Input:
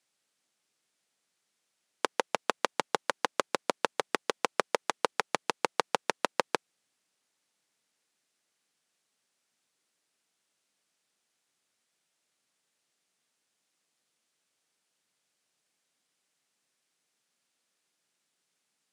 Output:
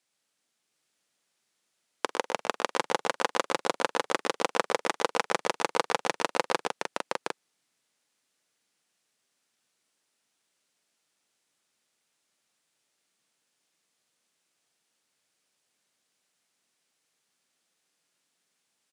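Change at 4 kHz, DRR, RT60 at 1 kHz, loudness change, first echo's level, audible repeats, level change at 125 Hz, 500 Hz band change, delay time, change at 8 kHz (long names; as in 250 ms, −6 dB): +2.5 dB, no reverb audible, no reverb audible, +2.0 dB, −19.0 dB, 4, +3.0 dB, +2.5 dB, 46 ms, +2.5 dB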